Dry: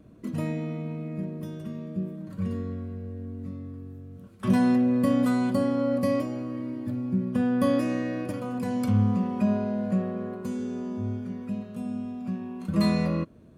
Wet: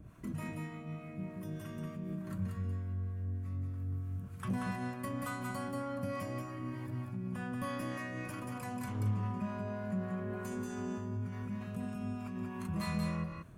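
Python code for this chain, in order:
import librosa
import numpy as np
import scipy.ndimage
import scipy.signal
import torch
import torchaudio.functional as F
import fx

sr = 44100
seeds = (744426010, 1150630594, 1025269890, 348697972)

p1 = fx.graphic_eq(x, sr, hz=(250, 500, 4000), db=(-11, -11, -8))
p2 = fx.over_compress(p1, sr, threshold_db=-45.0, ratio=-1.0)
p3 = p1 + (p2 * 10.0 ** (1.0 / 20.0))
p4 = np.clip(10.0 ** (24.5 / 20.0) * p3, -1.0, 1.0) / 10.0 ** (24.5 / 20.0)
p5 = fx.harmonic_tremolo(p4, sr, hz=3.3, depth_pct=70, crossover_hz=610.0)
p6 = p5 + fx.echo_single(p5, sr, ms=183, db=-3.5, dry=0)
y = p6 * 10.0 ** (-3.0 / 20.0)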